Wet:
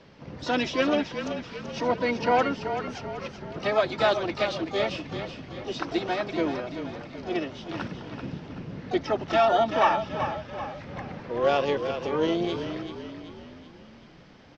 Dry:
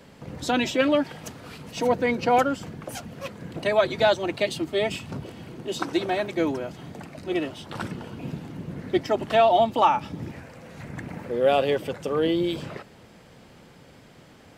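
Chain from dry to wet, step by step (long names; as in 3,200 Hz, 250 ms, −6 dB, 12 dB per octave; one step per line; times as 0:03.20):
pitch-shifted copies added −7 semitones −16 dB, +4 semitones −15 dB, +12 semitones −12 dB
Chebyshev low-pass filter 5,700 Hz, order 4
echo with shifted repeats 383 ms, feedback 50%, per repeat −30 Hz, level −8.5 dB
level −2.5 dB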